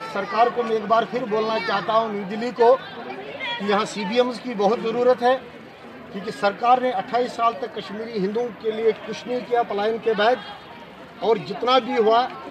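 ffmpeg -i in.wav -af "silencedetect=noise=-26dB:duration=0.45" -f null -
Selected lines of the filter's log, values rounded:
silence_start: 5.38
silence_end: 6.15 | silence_duration: 0.77
silence_start: 10.49
silence_end: 11.22 | silence_duration: 0.73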